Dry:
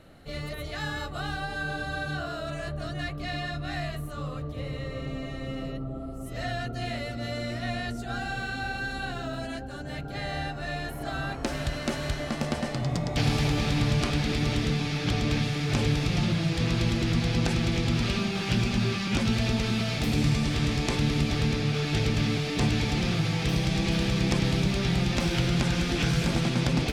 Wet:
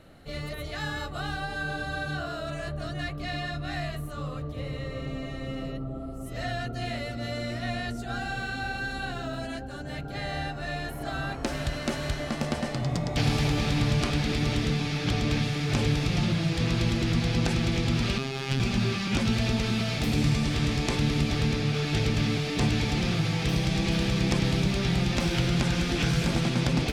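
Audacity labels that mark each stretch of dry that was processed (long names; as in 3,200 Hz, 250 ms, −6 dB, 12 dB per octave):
18.180000	18.600000	phases set to zero 134 Hz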